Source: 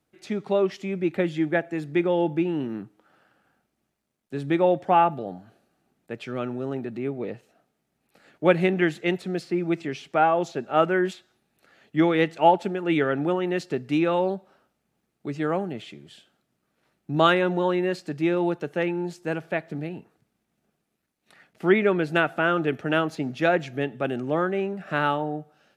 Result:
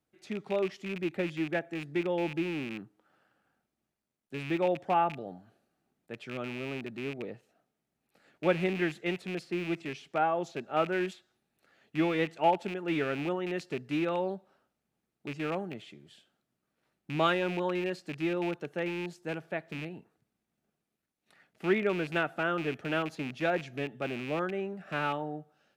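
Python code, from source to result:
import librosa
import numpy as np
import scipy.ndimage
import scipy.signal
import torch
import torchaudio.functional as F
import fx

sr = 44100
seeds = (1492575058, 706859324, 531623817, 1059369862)

y = fx.rattle_buzz(x, sr, strikes_db=-32.0, level_db=-22.0)
y = y * librosa.db_to_amplitude(-8.0)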